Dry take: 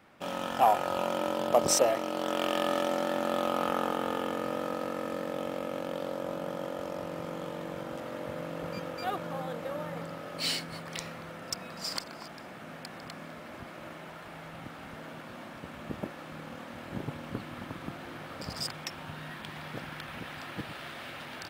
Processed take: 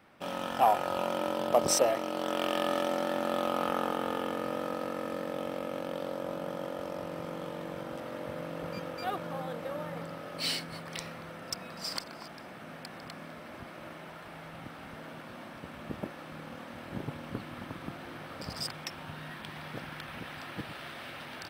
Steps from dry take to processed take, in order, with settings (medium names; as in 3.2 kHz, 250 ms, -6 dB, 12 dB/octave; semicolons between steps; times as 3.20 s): band-stop 6.9 kHz, Q 8.6; trim -1 dB